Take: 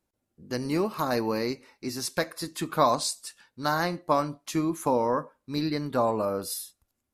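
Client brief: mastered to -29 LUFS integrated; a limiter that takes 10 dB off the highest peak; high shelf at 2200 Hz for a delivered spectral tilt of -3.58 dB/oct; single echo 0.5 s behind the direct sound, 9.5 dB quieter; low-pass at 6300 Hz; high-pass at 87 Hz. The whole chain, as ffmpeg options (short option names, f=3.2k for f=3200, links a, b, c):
-af "highpass=87,lowpass=6.3k,highshelf=f=2.2k:g=9,alimiter=limit=-16.5dB:level=0:latency=1,aecho=1:1:500:0.335,volume=0.5dB"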